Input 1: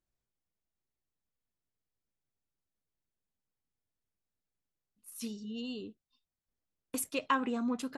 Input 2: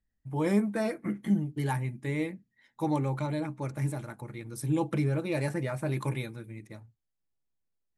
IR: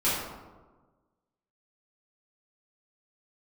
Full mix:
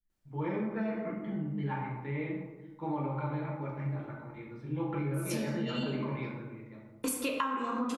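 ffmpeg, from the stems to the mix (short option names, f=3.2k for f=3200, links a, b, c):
-filter_complex "[0:a]adelay=100,volume=1.5dB,asplit=2[a][b];[b]volume=-8.5dB[c];[1:a]lowpass=f=3.3k:w=0.5412,lowpass=f=3.3k:w=1.3066,volume=-13.5dB,asplit=2[d][e];[e]volume=-4.5dB[f];[2:a]atrim=start_sample=2205[g];[c][f]amix=inputs=2:normalize=0[h];[h][g]afir=irnorm=-1:irlink=0[i];[a][d][i]amix=inputs=3:normalize=0,adynamicequalizer=threshold=0.00447:dfrequency=1300:dqfactor=1:tfrequency=1300:tqfactor=1:attack=5:release=100:ratio=0.375:range=2.5:mode=boostabove:tftype=bell,acompressor=threshold=-29dB:ratio=12"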